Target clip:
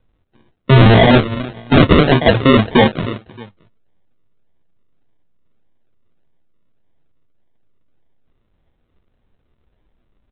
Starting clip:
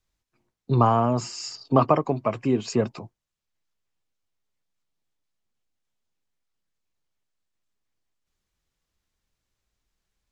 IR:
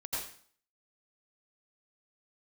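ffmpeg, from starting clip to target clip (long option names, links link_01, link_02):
-filter_complex "[0:a]highshelf=frequency=2200:gain=-10.5,asplit=2[link_01][link_02];[link_02]adelay=310,lowpass=frequency=1400:poles=1,volume=-19dB,asplit=2[link_03][link_04];[link_04]adelay=310,lowpass=frequency=1400:poles=1,volume=0.22[link_05];[link_01][link_03][link_05]amix=inputs=3:normalize=0,flanger=delay=8.1:depth=5.3:regen=60:speed=1.2:shape=sinusoidal,apsyclip=26dB,aresample=8000,acrusher=samples=8:mix=1:aa=0.000001:lfo=1:lforange=4.8:lforate=1.7,aresample=44100,volume=-3.5dB"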